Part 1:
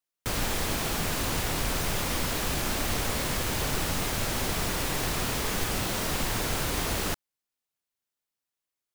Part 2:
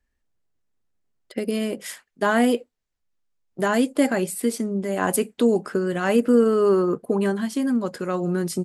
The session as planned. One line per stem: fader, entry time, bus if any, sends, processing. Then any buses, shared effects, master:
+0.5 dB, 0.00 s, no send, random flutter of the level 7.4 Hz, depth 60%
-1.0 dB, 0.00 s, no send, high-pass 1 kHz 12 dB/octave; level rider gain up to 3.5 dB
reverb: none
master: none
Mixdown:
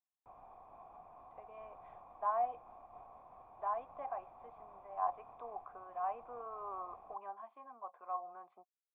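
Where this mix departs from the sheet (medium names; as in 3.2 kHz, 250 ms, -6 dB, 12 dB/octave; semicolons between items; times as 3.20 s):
stem 1 +0.5 dB -> -8.0 dB; master: extra cascade formant filter a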